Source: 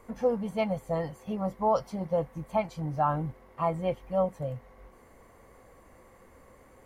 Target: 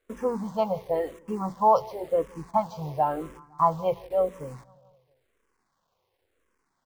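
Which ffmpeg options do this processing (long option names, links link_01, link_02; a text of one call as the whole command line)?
ffmpeg -i in.wav -filter_complex "[0:a]lowpass=frequency=5800:width=0.5412,lowpass=frequency=5800:width=1.3066,aemphasis=mode=production:type=50kf,bandreject=frequency=60:width_type=h:width=6,bandreject=frequency=120:width_type=h:width=6,bandreject=frequency=180:width_type=h:width=6,bandreject=frequency=240:width_type=h:width=6,agate=range=-20dB:threshold=-43dB:ratio=16:detection=peak,equalizer=frequency=400:width_type=o:width=0.67:gain=10,equalizer=frequency=1000:width_type=o:width=0.67:gain=10,equalizer=frequency=4000:width_type=o:width=0.67:gain=-4,acrusher=bits=9:dc=4:mix=0:aa=0.000001,asplit=2[link_01][link_02];[link_02]adelay=167,lowpass=frequency=3500:poles=1,volume=-22.5dB,asplit=2[link_03][link_04];[link_04]adelay=167,lowpass=frequency=3500:poles=1,volume=0.54,asplit=2[link_05][link_06];[link_06]adelay=167,lowpass=frequency=3500:poles=1,volume=0.54,asplit=2[link_07][link_08];[link_08]adelay=167,lowpass=frequency=3500:poles=1,volume=0.54[link_09];[link_03][link_05][link_07][link_09]amix=inputs=4:normalize=0[link_10];[link_01][link_10]amix=inputs=2:normalize=0,asplit=2[link_11][link_12];[link_12]afreqshift=-0.95[link_13];[link_11][link_13]amix=inputs=2:normalize=1" out.wav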